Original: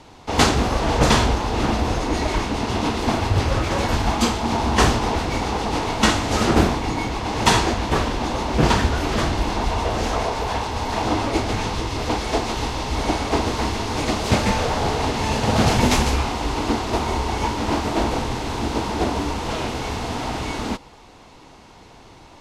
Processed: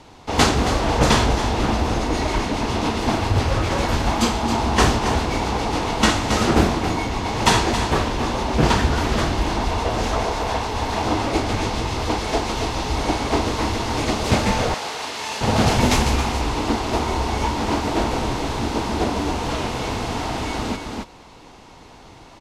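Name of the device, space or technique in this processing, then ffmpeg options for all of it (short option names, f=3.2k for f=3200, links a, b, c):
ducked delay: -filter_complex "[0:a]asplit=3[a][b][c];[b]adelay=272,volume=-4dB[d];[c]apad=whole_len=999983[e];[d][e]sidechaincompress=threshold=-23dB:ratio=8:attack=30:release=328[f];[a][f]amix=inputs=2:normalize=0,asettb=1/sr,asplit=3[g][h][i];[g]atrim=end=14.744[j];[h]atrim=start=14.74:end=15.41,asetpts=PTS-STARTPTS,afade=t=in:d=0.004:c=qsin,afade=t=out:st=0.666:d=0.004:c=qsin,highpass=f=1.5k:p=1[k];[i]atrim=start=15.406[l];[j][k]acrossfade=d=0.004:c1=hsin:c2=qsin[m];[m][l]acrossfade=d=0.004:c1=qsin:c2=hsin"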